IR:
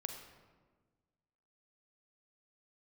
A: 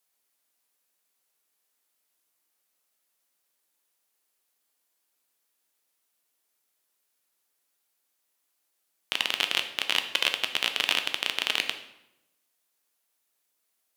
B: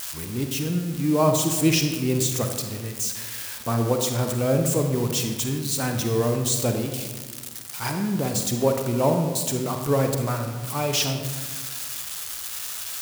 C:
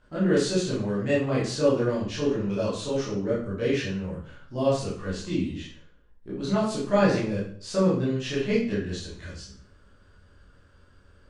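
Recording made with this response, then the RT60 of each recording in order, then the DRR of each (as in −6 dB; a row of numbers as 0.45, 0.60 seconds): B; 0.90, 1.4, 0.50 seconds; 6.5, 4.5, −8.5 decibels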